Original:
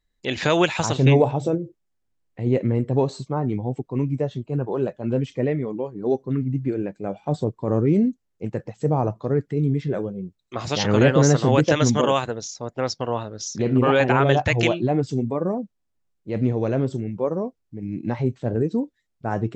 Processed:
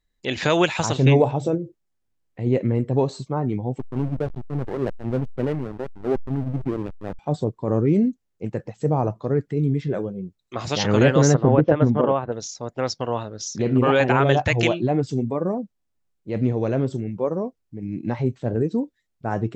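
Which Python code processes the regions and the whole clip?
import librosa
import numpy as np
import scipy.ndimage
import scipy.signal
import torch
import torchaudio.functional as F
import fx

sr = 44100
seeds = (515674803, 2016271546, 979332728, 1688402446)

y = fx.chain(x, sr, fx.high_shelf(hz=2000.0, db=-5.5),
    fx.backlash(play_db=-22.0),
    fx.sustainer(db_per_s=79.0), at=(3.79, 7.19))
y = fx.chain(y, sr, fx.lowpass(hz=1100.0, slope=12),
    fx.transient(attack_db=5, sustain_db=-1), at=(11.34, 12.32))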